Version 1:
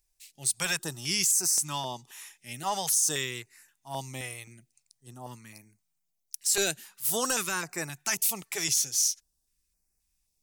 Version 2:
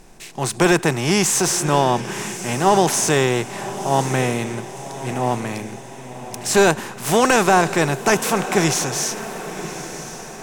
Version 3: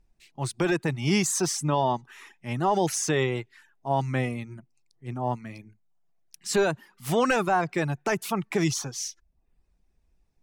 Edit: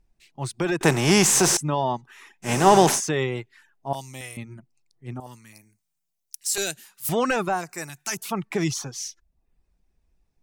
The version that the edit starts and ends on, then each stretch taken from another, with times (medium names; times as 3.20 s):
3
0.81–1.57 s: from 2
2.47–2.96 s: from 2, crossfade 0.10 s
3.93–4.37 s: from 1
5.20–7.09 s: from 1
7.59–8.18 s: from 1, crossfade 0.16 s